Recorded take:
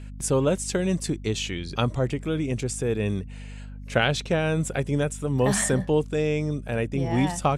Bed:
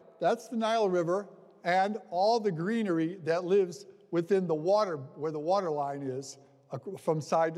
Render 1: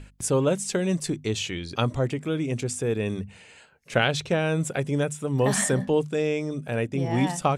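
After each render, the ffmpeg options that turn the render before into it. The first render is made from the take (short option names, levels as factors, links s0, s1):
-af "bandreject=f=50:t=h:w=6,bandreject=f=100:t=h:w=6,bandreject=f=150:t=h:w=6,bandreject=f=200:t=h:w=6,bandreject=f=250:t=h:w=6"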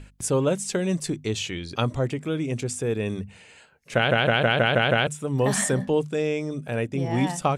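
-filter_complex "[0:a]asplit=8[s0][s1][s2][s3][s4][s5][s6][s7];[s0]atrim=end=4.112[s8];[s1]atrim=start=3.948:end=4.112[s9];[s2]atrim=start=3.948:end=4.112[s10];[s3]atrim=start=3.948:end=4.112[s11];[s4]atrim=start=3.948:end=4.112[s12];[s5]atrim=start=3.948:end=4.112[s13];[s6]atrim=start=3.948:end=4.112[s14];[s7]atrim=start=5.068[s15];[s8][s9]acrossfade=d=0.004:c1=hsin:c2=hsin[s16];[s16][s10]acrossfade=d=0.004:c1=hsin:c2=hsin[s17];[s17][s11]acrossfade=d=0.004:c1=hsin:c2=hsin[s18];[s18][s12]acrossfade=d=0.004:c1=hsin:c2=hsin[s19];[s19][s13]acrossfade=d=0.004:c1=hsin:c2=hsin[s20];[s20][s14]acrossfade=d=0.004:c1=hsin:c2=hsin[s21];[s21][s15]acrossfade=d=0.004:c1=hsin:c2=hsin"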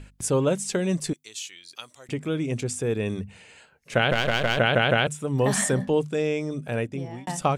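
-filter_complex "[0:a]asettb=1/sr,asplit=3[s0][s1][s2];[s0]atrim=end=1.134[s3];[s1]atrim=start=1.13:end=2.09,asetpts=PTS-STARTPTS,afade=t=in:d=0.004:c=qsin,afade=t=out:st=0.956:d=0.004:c=qsin,aderivative[s4];[s2]atrim=start=2.086[s5];[s3][s4]acrossfade=d=0.004:c1=hsin:c2=qsin[s6];[s6][s5]acrossfade=d=0.004:c1=qsin:c2=hsin,asettb=1/sr,asplit=3[s7][s8][s9];[s7]atrim=end=4.124[s10];[s8]atrim=start=4.12:end=4.58,asetpts=PTS-STARTPTS,afade=t=in:d=0.004:c=qsin,afade=t=out:st=0.456:d=0.004:c=qsin,aeval=exprs='if(lt(val(0),0),0.251*val(0),val(0))':c=same[s11];[s9]atrim=start=4.576[s12];[s10][s11]acrossfade=d=0.004:c1=hsin:c2=qsin[s13];[s13][s12]acrossfade=d=0.004:c1=qsin:c2=hsin,asplit=2[s14][s15];[s14]atrim=end=7.27,asetpts=PTS-STARTPTS,afade=t=out:st=6.76:d=0.51[s16];[s15]atrim=start=7.27,asetpts=PTS-STARTPTS,afade=t=in:d=0.004:c=hsin[s17];[s16][s17]concat=n=2:v=0:a=1"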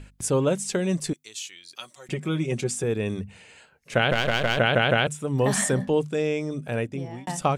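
-filter_complex "[0:a]asettb=1/sr,asplit=3[s0][s1][s2];[s0]atrim=end=1.804[s3];[s1]atrim=start=1.8:end=2.84,asetpts=PTS-STARTPTS,afade=t=in:d=0.004:c=qsin,afade=t=out:st=1.036:d=0.004:c=qsin,aecho=1:1:5.4:0.72,atrim=end_sample=45864[s4];[s2]atrim=start=2.836[s5];[s3][s4]acrossfade=d=0.004:c1=hsin:c2=qsin[s6];[s6][s5]acrossfade=d=0.004:c1=qsin:c2=hsin"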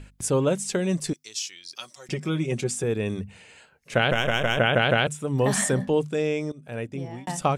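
-filter_complex "[0:a]asettb=1/sr,asplit=3[s0][s1][s2];[s0]atrim=end=1.084[s3];[s1]atrim=start=1.08:end=2.3,asetpts=PTS-STARTPTS,afade=t=in:d=0.004:c=qsin,afade=t=out:st=1.216:d=0.004:c=qsin,equalizer=f=5300:w=3.8:g=13[s4];[s2]atrim=start=2.296[s5];[s3][s4]acrossfade=d=0.004:c1=hsin:c2=qsin[s6];[s6][s5]acrossfade=d=0.004:c1=qsin:c2=hsin,asettb=1/sr,asplit=3[s7][s8][s9];[s7]atrim=end=4.124[s10];[s8]atrim=start=4.12:end=4.78,asetpts=PTS-STARTPTS,afade=t=in:d=0.004:c=qsin,afade=t=out:st=0.656:d=0.004:c=qsin,asuperstop=centerf=4400:order=8:qfactor=2.4[s11];[s9]atrim=start=4.776[s12];[s10][s11]acrossfade=d=0.004:c1=hsin:c2=qsin[s13];[s13][s12]acrossfade=d=0.004:c1=qsin:c2=hsin,asplit=2[s14][s15];[s14]atrim=end=6.52,asetpts=PTS-STARTPTS,afade=t=out:st=6.516:d=0.004:c=hsin:silence=0.11885[s16];[s15]atrim=start=6.52,asetpts=PTS-STARTPTS,afade=t=in:d=0.52:silence=0.11885[s17];[s16][s17]concat=n=2:v=0:a=1"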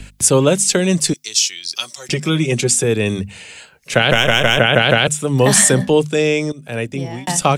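-filter_complex "[0:a]acrossover=split=150|420|2300[s0][s1][s2][s3];[s3]acontrast=87[s4];[s0][s1][s2][s4]amix=inputs=4:normalize=0,alimiter=level_in=2.82:limit=0.891:release=50:level=0:latency=1"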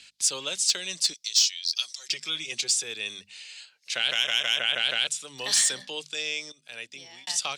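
-af "bandpass=f=4400:t=q:w=2.1:csg=0,asoftclip=type=tanh:threshold=0.299"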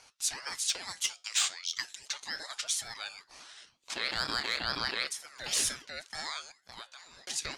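-af "flanger=delay=7.3:depth=4.9:regen=-77:speed=0.37:shape=sinusoidal,aeval=exprs='val(0)*sin(2*PI*1400*n/s+1400*0.3/2.1*sin(2*PI*2.1*n/s))':c=same"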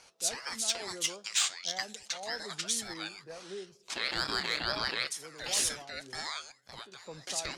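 -filter_complex "[1:a]volume=0.133[s0];[0:a][s0]amix=inputs=2:normalize=0"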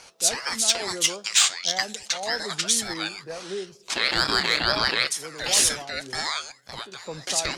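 -af "volume=3.16"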